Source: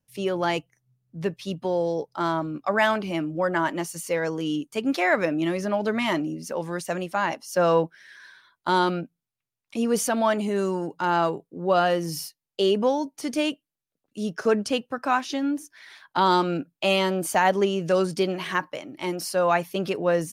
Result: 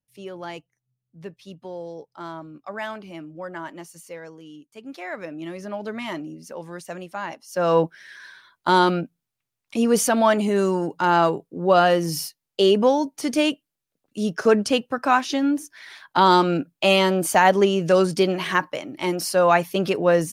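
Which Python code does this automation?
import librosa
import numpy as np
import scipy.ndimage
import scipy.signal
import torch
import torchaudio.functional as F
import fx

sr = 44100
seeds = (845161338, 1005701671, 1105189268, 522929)

y = fx.gain(x, sr, db=fx.line((3.99, -10.0), (4.52, -16.5), (5.75, -6.0), (7.44, -6.0), (7.84, 4.5)))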